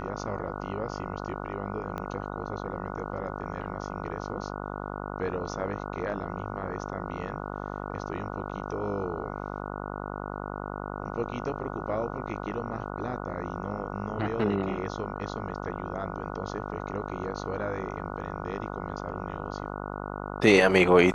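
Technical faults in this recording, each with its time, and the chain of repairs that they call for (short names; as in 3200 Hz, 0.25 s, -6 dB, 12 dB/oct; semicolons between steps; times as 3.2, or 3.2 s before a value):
buzz 50 Hz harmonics 29 -36 dBFS
1.98 pop -22 dBFS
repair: de-click; de-hum 50 Hz, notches 29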